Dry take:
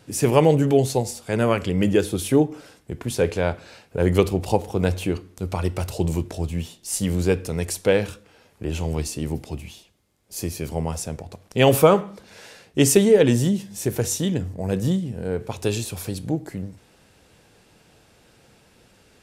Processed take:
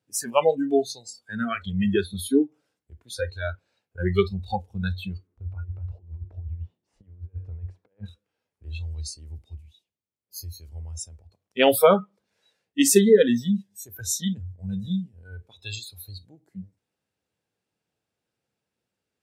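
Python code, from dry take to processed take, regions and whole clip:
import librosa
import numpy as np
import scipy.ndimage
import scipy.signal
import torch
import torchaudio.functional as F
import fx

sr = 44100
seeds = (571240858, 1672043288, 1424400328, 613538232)

y = fx.chain(x, sr, fx.lowpass(hz=1500.0, slope=12),
    fx.over_compress(threshold_db=-27.0, ratio=-0.5), at=(5.27, 8.06))
y = scipy.signal.sosfilt(scipy.signal.butter(2, 82.0, 'highpass', fs=sr, output='sos'), y)
y = fx.noise_reduce_blind(y, sr, reduce_db=28)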